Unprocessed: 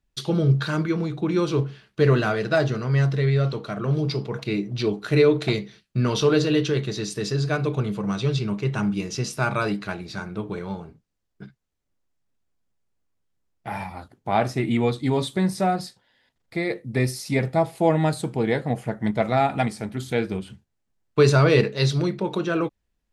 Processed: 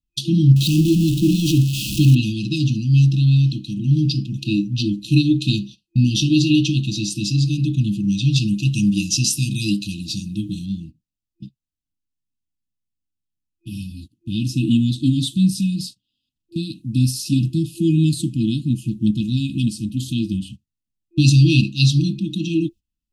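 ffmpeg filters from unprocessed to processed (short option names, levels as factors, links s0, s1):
-filter_complex "[0:a]asettb=1/sr,asplit=3[s0][s1][s2];[s0]atrim=end=0.564[s3];[s1]atrim=start=0.56:end=2.15,asetpts=PTS-STARTPTS,afade=t=in:d=0.004:c=qsin,afade=t=out:st=1.586:d=0.004:c=qsin,aeval=exprs='val(0)+0.5*0.0596*sgn(val(0))':c=same[s4];[s2]atrim=start=2.146[s5];[s3][s4]acrossfade=d=0.004:c1=hsin:c2=qsin[s6];[s6][s5]acrossfade=d=0.004:c1=qsin:c2=hsin,asettb=1/sr,asplit=3[s7][s8][s9];[s7]atrim=end=8.364[s10];[s8]atrim=start=8.36:end=10.66,asetpts=PTS-STARTPTS,afade=t=in:d=0.004:c=qsin,afade=t=out:st=2.296:d=0.004:c=qsin,highshelf=f=4300:g=11[s11];[s9]atrim=start=10.656[s12];[s10][s11]acrossfade=d=0.004:c1=hsin:c2=qsin[s13];[s13][s12]acrossfade=d=0.004:c1=qsin:c2=hsin,agate=range=0.178:threshold=0.01:ratio=16:detection=peak,afftfilt=real='re*(1-between(b*sr/4096,340,2500))':imag='im*(1-between(b*sr/4096,340,2500))':win_size=4096:overlap=0.75,volume=2.24"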